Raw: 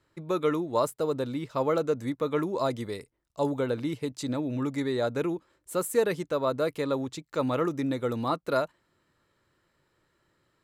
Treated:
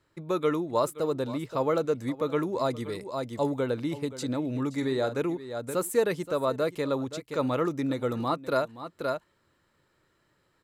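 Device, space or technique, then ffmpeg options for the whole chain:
ducked delay: -filter_complex "[0:a]asplit=3[s0][s1][s2];[s1]adelay=524,volume=0.668[s3];[s2]apad=whole_len=492327[s4];[s3][s4]sidechaincompress=threshold=0.00794:ratio=6:attack=12:release=284[s5];[s0][s5]amix=inputs=2:normalize=0,asettb=1/sr,asplit=3[s6][s7][s8];[s6]atrim=end=4.754[s9];[s7]atrim=start=4.75:end=5.2,asetpts=PTS-STARTPTS,afade=t=in:d=0.004:c=qsin,afade=t=out:st=0.446:d=0.004:c=qsin,asplit=2[s10][s11];[s11]adelay=45,volume=0.282[s12];[s10][s12]amix=inputs=2:normalize=0,atrim=end_sample=19845[s13];[s8]atrim=start=5.196[s14];[s9][s13]acrossfade=d=0.004:c1=hsin:c2=qsin[s15];[s15][s14]acrossfade=d=0.004:c1=qsin:c2=hsin"

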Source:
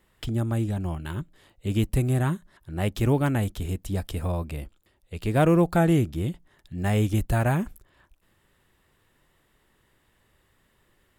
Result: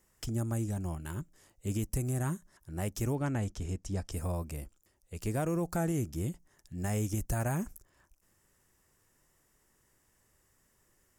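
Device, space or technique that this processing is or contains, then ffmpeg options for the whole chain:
over-bright horn tweeter: -filter_complex "[0:a]asettb=1/sr,asplit=3[s0][s1][s2];[s0]atrim=end=3.154[s3];[s1]atrim=start=3.15:end=4.12,asetpts=PTS-STARTPTS,afade=t=in:d=0.004:c=qsin,afade=t=out:st=0.966:d=0.004:c=qsin,lowpass=5400[s4];[s2]atrim=start=4.116[s5];[s3][s4]acrossfade=d=0.004:c1=hsin:c2=qsin[s6];[s6][s5]acrossfade=d=0.004:c1=qsin:c2=hsin,highshelf=f=4700:t=q:w=3:g=7.5,alimiter=limit=0.158:level=0:latency=1:release=148,volume=0.473"

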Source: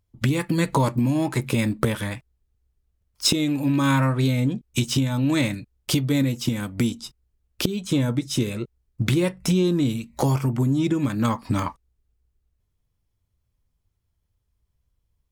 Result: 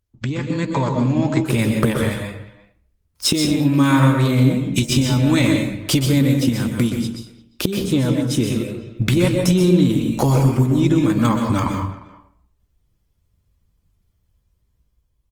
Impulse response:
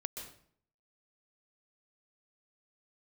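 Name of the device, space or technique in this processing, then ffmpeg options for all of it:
speakerphone in a meeting room: -filter_complex "[1:a]atrim=start_sample=2205[s0];[0:a][s0]afir=irnorm=-1:irlink=0,asplit=2[s1][s2];[s2]adelay=350,highpass=300,lowpass=3400,asoftclip=type=hard:threshold=0.133,volume=0.112[s3];[s1][s3]amix=inputs=2:normalize=0,dynaudnorm=f=240:g=9:m=2.51" -ar 48000 -c:a libopus -b:a 24k

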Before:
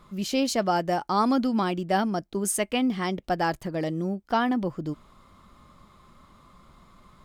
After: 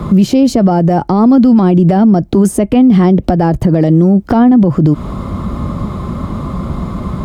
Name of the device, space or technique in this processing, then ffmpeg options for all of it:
mastering chain: -filter_complex "[0:a]highpass=51,equalizer=f=710:t=o:w=0.77:g=1.5,acrossover=split=140|860[s0][s1][s2];[s0]acompressor=threshold=0.00447:ratio=4[s3];[s1]acompressor=threshold=0.0158:ratio=4[s4];[s2]acompressor=threshold=0.00794:ratio=4[s5];[s3][s4][s5]amix=inputs=3:normalize=0,acompressor=threshold=0.0126:ratio=2.5,asoftclip=type=tanh:threshold=0.0668,tiltshelf=f=730:g=10,alimiter=level_in=35.5:limit=0.891:release=50:level=0:latency=1,volume=0.891"

